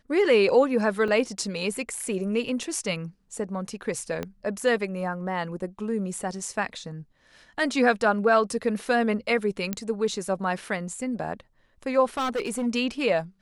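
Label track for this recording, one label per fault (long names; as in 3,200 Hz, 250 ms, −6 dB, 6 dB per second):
1.080000	1.080000	drop-out 4.3 ms
4.230000	4.230000	click −17 dBFS
9.730000	9.730000	click −13 dBFS
12.170000	12.670000	clipping −23.5 dBFS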